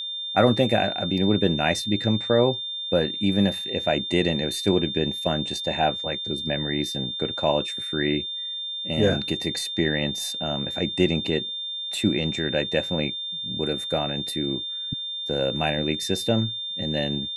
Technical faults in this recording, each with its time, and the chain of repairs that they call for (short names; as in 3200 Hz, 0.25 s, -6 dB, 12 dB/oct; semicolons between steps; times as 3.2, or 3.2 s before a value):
tone 3600 Hz -29 dBFS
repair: notch 3600 Hz, Q 30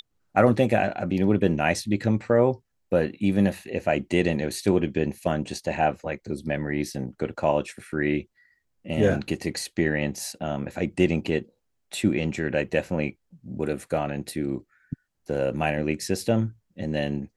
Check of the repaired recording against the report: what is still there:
none